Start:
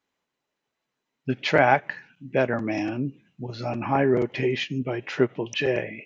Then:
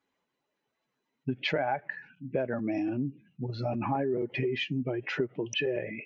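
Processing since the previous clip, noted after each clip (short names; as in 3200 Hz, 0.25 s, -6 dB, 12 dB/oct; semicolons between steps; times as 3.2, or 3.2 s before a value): spectral contrast raised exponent 1.5; compressor 5:1, threshold -27 dBFS, peak gain reduction 12 dB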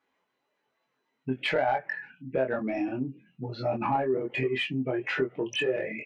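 overdrive pedal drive 11 dB, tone 2000 Hz, clips at -16.5 dBFS; doubler 23 ms -4 dB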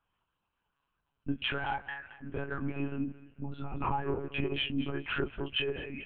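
fixed phaser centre 3000 Hz, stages 8; thinning echo 0.221 s, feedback 40%, high-pass 340 Hz, level -16.5 dB; monotone LPC vocoder at 8 kHz 140 Hz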